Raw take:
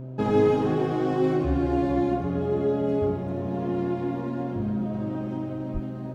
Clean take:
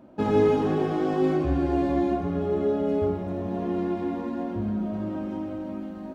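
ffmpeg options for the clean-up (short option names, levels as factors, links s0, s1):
-filter_complex "[0:a]bandreject=f=129.4:t=h:w=4,bandreject=f=258.8:t=h:w=4,bandreject=f=388.2:t=h:w=4,bandreject=f=517.6:t=h:w=4,bandreject=f=647:t=h:w=4,asplit=3[s0][s1][s2];[s0]afade=t=out:st=5.73:d=0.02[s3];[s1]highpass=f=140:w=0.5412,highpass=f=140:w=1.3066,afade=t=in:st=5.73:d=0.02,afade=t=out:st=5.85:d=0.02[s4];[s2]afade=t=in:st=5.85:d=0.02[s5];[s3][s4][s5]amix=inputs=3:normalize=0"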